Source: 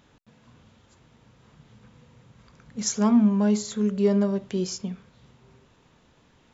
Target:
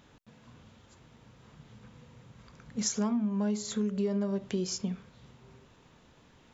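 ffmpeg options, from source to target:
-af "acompressor=threshold=-27dB:ratio=8"

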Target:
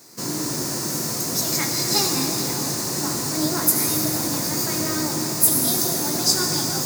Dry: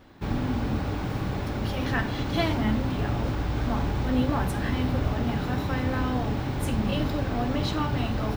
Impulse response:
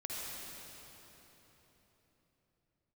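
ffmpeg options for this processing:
-filter_complex "[0:a]asetrate=53802,aresample=44100,highpass=f=140:w=0.5412,highpass=f=140:w=1.3066,aexciter=amount=12:drive=7.5:freq=4.8k,asplit=2[a][b];[1:a]atrim=start_sample=2205,highshelf=f=7.6k:g=6,adelay=20[c];[b][c]afir=irnorm=-1:irlink=0,volume=-4.5dB[d];[a][d]amix=inputs=2:normalize=0,volume=-1dB"

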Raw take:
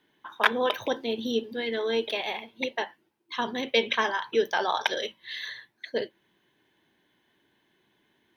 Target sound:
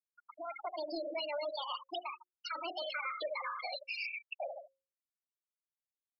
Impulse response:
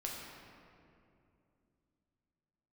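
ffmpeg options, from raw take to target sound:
-filter_complex "[0:a]tremolo=f=5.5:d=0.66,asplit=2[a][b];[b]adelay=102,lowpass=f=4.7k:p=1,volume=-16dB,asplit=2[c][d];[d]adelay=102,lowpass=f=4.7k:p=1,volume=0.41,asplit=2[e][f];[f]adelay=102,lowpass=f=4.7k:p=1,volume=0.41,asplit=2[g][h];[h]adelay=102,lowpass=f=4.7k:p=1,volume=0.41[i];[c][e][g][i]amix=inputs=4:normalize=0[j];[a][j]amix=inputs=2:normalize=0,alimiter=limit=-21dB:level=0:latency=1:release=74,acrossover=split=480 4300:gain=0.2 1 0.251[k][l][m];[k][l][m]amix=inputs=3:normalize=0,acompressor=threshold=-44dB:ratio=6,equalizer=f=130:w=1.5:g=11,dynaudnorm=f=490:g=3:m=16.5dB,asoftclip=type=tanh:threshold=-31dB,flanger=delay=0.7:depth=7:regen=-72:speed=1.5:shape=sinusoidal,asetrate=59535,aresample=44100,afftfilt=real='re*gte(hypot(re,im),0.0251)':imag='im*gte(hypot(re,im),0.0251)':win_size=1024:overlap=0.75,bandreject=f=60:t=h:w=6,bandreject=f=120:t=h:w=6,bandreject=f=180:t=h:w=6,bandreject=f=240:t=h:w=6,bandreject=f=300:t=h:w=6,bandreject=f=360:t=h:w=6,bandreject=f=420:t=h:w=6,bandreject=f=480:t=h:w=6,bandreject=f=540:t=h:w=6,volume=2.5dB"

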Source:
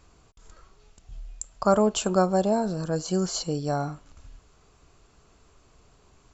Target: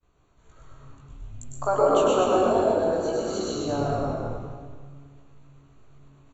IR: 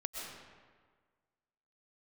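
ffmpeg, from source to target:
-filter_complex "[0:a]asettb=1/sr,asplit=3[a][b][c];[a]atrim=end=1.274[d];[b]atrim=start=1.27:end=3.56,asetpts=PTS-STARTPTS,afade=t=in:d=0.004:c=qsin,afade=t=out:st=2.286:d=0.004:c=qsin,highpass=f=370:w=0.5412,highpass=f=370:w=1.3066[e];[c]atrim=start=3.556[f];[d][e]acrossfade=d=0.004:c1=hsin:c2=qsin[g];[g][f]acrossfade=d=0.004:c1=qsin:c2=hsin,agate=range=-33dB:threshold=-52dB:ratio=3:detection=peak,asuperstop=centerf=5100:order=4:qfactor=4.1,asplit=7[h][i][j][k][l][m][n];[i]adelay=122,afreqshift=-34,volume=-4dB[o];[j]adelay=244,afreqshift=-68,volume=-10.4dB[p];[k]adelay=366,afreqshift=-102,volume=-16.8dB[q];[l]adelay=488,afreqshift=-136,volume=-23.1dB[r];[m]adelay=610,afreqshift=-170,volume=-29.5dB[s];[n]adelay=732,afreqshift=-204,volume=-35.9dB[t];[h][o][p][q][r][s][t]amix=inputs=7:normalize=0,dynaudnorm=f=150:g=5:m=3.5dB[u];[1:a]atrim=start_sample=2205[v];[u][v]afir=irnorm=-1:irlink=0,flanger=delay=16.5:depth=2.4:speed=0.58,aemphasis=mode=reproduction:type=50kf,asplit=5[w][x][y][z][aa];[x]adelay=102,afreqshift=-140,volume=-5.5dB[ab];[y]adelay=204,afreqshift=-280,volume=-15.7dB[ac];[z]adelay=306,afreqshift=-420,volume=-25.8dB[ad];[aa]adelay=408,afreqshift=-560,volume=-36dB[ae];[w][ab][ac][ad][ae]amix=inputs=5:normalize=0"

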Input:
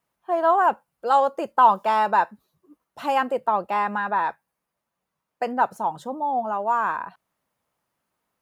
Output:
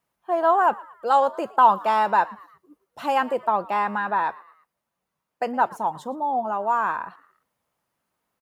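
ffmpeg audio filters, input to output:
-filter_complex "[0:a]asplit=4[a][b][c][d];[b]adelay=114,afreqshift=97,volume=-21.5dB[e];[c]adelay=228,afreqshift=194,volume=-28.8dB[f];[d]adelay=342,afreqshift=291,volume=-36.2dB[g];[a][e][f][g]amix=inputs=4:normalize=0"

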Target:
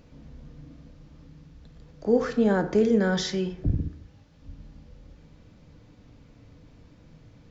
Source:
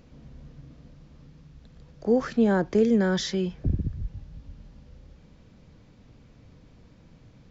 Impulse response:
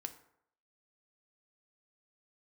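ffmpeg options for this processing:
-filter_complex "[0:a]asettb=1/sr,asplit=3[a][b][c];[a]atrim=end=3.864[d];[b]atrim=start=3.86:end=4.42,asetpts=PTS-STARTPTS,afade=t=in:d=0.004:c=qsin,afade=t=out:st=0.556:d=0.004:c=qsin,highpass=f=460:p=1[e];[c]atrim=start=4.416[f];[d][e]acrossfade=d=0.004:c1=hsin:c2=qsin[g];[g][f]acrossfade=d=0.004:c1=qsin:c2=hsin[h];[1:a]atrim=start_sample=2205[i];[h][i]afir=irnorm=-1:irlink=0,volume=3.5dB"

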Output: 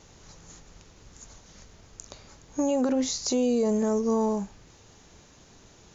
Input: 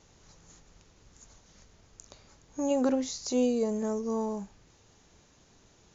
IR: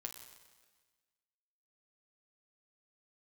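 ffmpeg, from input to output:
-af "alimiter=level_in=0.5dB:limit=-24dB:level=0:latency=1:release=51,volume=-0.5dB,volume=7dB"

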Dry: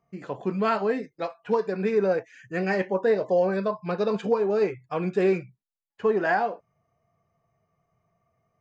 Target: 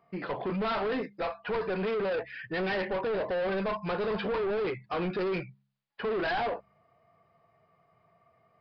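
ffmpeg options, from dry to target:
-filter_complex "[0:a]asplit=2[a][b];[b]highpass=f=720:p=1,volume=21dB,asoftclip=type=tanh:threshold=-13dB[c];[a][c]amix=inputs=2:normalize=0,lowpass=f=3.2k:p=1,volume=-6dB,lowshelf=f=240:g=6,bandreject=f=67.45:t=h:w=4,bandreject=f=134.9:t=h:w=4,bandreject=f=202.35:t=h:w=4,asoftclip=type=tanh:threshold=-22.5dB,aresample=11025,aresample=44100,volume=-5dB"

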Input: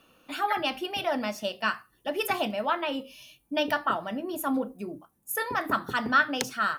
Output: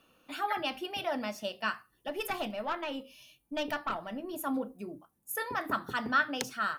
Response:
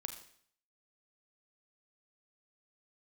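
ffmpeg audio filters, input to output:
-filter_complex "[0:a]asettb=1/sr,asplit=3[a][b][c];[a]atrim=end=2.084[d];[b]atrim=start=2.08:end=4.33,asetpts=PTS-STARTPTS,afade=t=in:d=0.004:c=qsin,afade=t=out:st=2.246:d=0.004:c=qsin,aeval=exprs='(tanh(8.91*val(0)+0.35)-tanh(0.35))/8.91':c=same[e];[c]atrim=start=4.326[f];[d][e]acrossfade=d=0.004:c1=hsin:c2=qsin[g];[g][f]acrossfade=d=0.004:c1=qsin:c2=hsin,volume=-5dB"

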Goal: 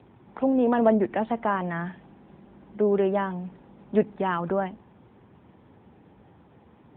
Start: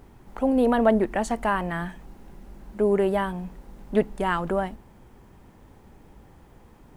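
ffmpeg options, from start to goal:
-filter_complex "[0:a]acrossover=split=270|1400|2800[a][b][c][d];[c]alimiter=level_in=6dB:limit=-24dB:level=0:latency=1,volume=-6dB[e];[a][b][e][d]amix=inputs=4:normalize=0" -ar 8000 -c:a libopencore_amrnb -b:a 10200

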